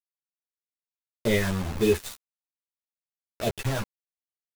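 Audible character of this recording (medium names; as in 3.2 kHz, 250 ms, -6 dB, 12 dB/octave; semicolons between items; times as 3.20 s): phasing stages 4, 1.8 Hz, lowest notch 400–1600 Hz; a quantiser's noise floor 6-bit, dither none; a shimmering, thickened sound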